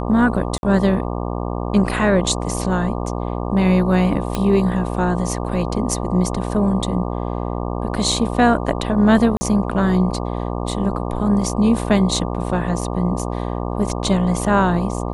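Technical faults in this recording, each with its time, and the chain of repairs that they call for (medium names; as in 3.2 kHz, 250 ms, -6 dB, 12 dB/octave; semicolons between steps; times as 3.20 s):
buzz 60 Hz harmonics 20 -24 dBFS
0.58–0.63 s: dropout 51 ms
4.35 s: pop -8 dBFS
9.37–9.41 s: dropout 40 ms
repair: de-click; de-hum 60 Hz, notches 20; interpolate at 0.58 s, 51 ms; interpolate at 9.37 s, 40 ms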